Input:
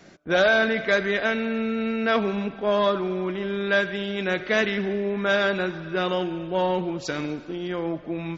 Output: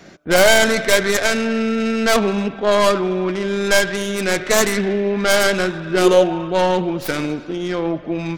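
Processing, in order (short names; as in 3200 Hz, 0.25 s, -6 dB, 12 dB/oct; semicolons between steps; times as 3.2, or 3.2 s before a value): tracing distortion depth 0.39 ms; 5.88–6.49 bell 220 Hz -> 1200 Hz +13.5 dB 0.41 oct; gain +7 dB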